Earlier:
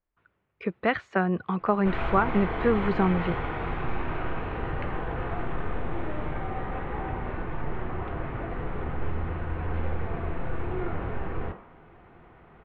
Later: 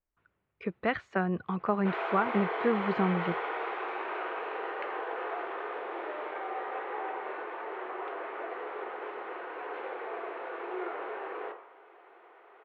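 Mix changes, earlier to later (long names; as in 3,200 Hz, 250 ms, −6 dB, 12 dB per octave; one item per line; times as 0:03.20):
speech −4.5 dB
background: add Chebyshev high-pass filter 390 Hz, order 4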